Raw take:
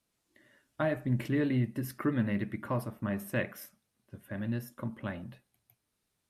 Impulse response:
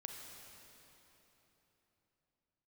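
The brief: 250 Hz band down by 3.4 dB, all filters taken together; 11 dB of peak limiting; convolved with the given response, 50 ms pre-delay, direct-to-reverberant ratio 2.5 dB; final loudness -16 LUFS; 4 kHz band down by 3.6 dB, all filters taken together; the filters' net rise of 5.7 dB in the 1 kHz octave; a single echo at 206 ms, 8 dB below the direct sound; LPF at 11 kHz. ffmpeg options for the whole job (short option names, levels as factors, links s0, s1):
-filter_complex "[0:a]lowpass=11000,equalizer=f=250:t=o:g=-4.5,equalizer=f=1000:t=o:g=7.5,equalizer=f=4000:t=o:g=-6,alimiter=level_in=1.26:limit=0.0631:level=0:latency=1,volume=0.794,aecho=1:1:206:0.398,asplit=2[s0][s1];[1:a]atrim=start_sample=2205,adelay=50[s2];[s1][s2]afir=irnorm=-1:irlink=0,volume=1.06[s3];[s0][s3]amix=inputs=2:normalize=0,volume=10"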